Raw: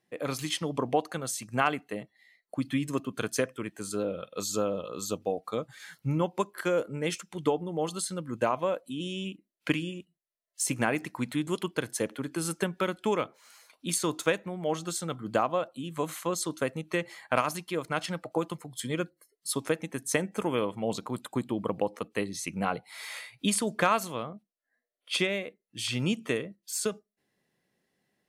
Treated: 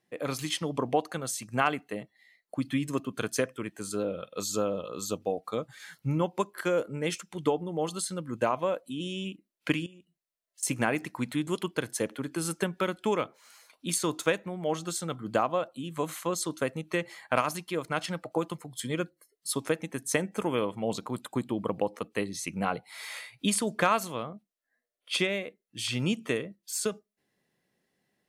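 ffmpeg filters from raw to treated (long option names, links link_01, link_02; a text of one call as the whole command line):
ffmpeg -i in.wav -filter_complex "[0:a]asettb=1/sr,asplit=3[link_01][link_02][link_03];[link_01]atrim=end=9.864[link_04];[link_02]atrim=start=9.86:end=10.63,asetpts=PTS-STARTPTS,afade=type=in:duration=0.004:curve=qsin,afade=type=out:start_time=0.766:duration=0.004:curve=qsin,acompressor=threshold=-52dB:ratio=4:attack=3.2:release=140:knee=1:detection=peak[link_05];[link_03]atrim=start=10.626[link_06];[link_04][link_05]acrossfade=duration=0.004:curve1=hsin:curve2=qsin[link_07];[link_07][link_06]acrossfade=duration=0.004:curve1=qsin:curve2=hsin" out.wav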